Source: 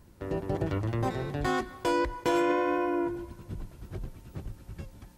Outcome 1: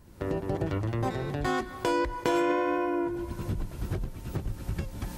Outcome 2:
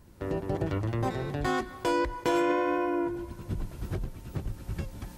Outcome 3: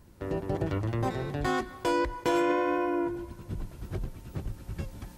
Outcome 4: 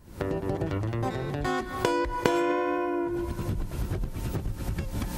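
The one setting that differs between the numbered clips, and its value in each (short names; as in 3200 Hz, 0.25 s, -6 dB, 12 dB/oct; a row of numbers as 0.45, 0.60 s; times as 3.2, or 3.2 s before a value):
recorder AGC, rising by: 35, 14, 5.6, 89 dB/s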